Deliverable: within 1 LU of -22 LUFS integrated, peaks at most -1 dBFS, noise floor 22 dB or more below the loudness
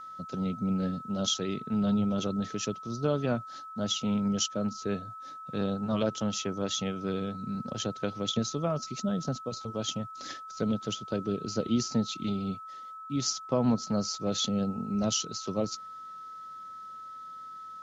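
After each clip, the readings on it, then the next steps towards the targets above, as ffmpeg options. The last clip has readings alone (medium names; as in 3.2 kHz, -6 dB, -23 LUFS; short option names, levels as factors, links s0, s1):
steady tone 1.3 kHz; tone level -41 dBFS; loudness -31.5 LUFS; peak level -14.0 dBFS; loudness target -22.0 LUFS
-> -af "bandreject=f=1300:w=30"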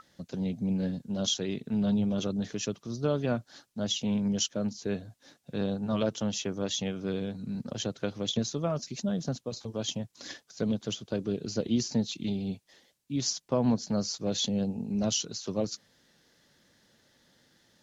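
steady tone not found; loudness -31.5 LUFS; peak level -14.0 dBFS; loudness target -22.0 LUFS
-> -af "volume=2.99"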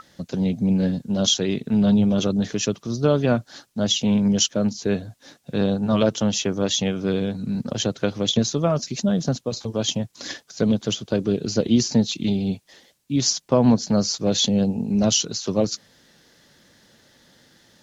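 loudness -22.0 LUFS; peak level -4.5 dBFS; noise floor -60 dBFS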